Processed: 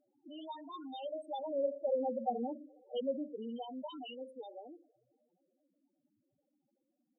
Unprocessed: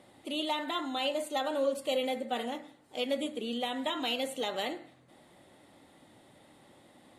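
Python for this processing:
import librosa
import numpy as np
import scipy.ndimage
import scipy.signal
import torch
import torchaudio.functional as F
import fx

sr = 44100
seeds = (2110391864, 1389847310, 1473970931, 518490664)

y = fx.doppler_pass(x, sr, speed_mps=7, closest_m=3.5, pass_at_s=2.42)
y = fx.echo_banded(y, sr, ms=123, feedback_pct=74, hz=550.0, wet_db=-22.5)
y = fx.spec_topn(y, sr, count=4)
y = y * 10.0 ** (2.0 / 20.0)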